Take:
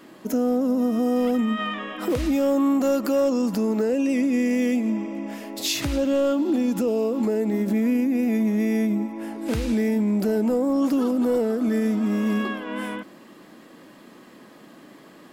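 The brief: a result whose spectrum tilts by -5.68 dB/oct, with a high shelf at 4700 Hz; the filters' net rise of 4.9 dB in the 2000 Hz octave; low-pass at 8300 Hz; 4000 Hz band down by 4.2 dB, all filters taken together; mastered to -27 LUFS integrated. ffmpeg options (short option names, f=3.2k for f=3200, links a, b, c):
-af "lowpass=8.3k,equalizer=f=2k:t=o:g=8,equalizer=f=4k:t=o:g=-6.5,highshelf=f=4.7k:g=-3.5,volume=-4dB"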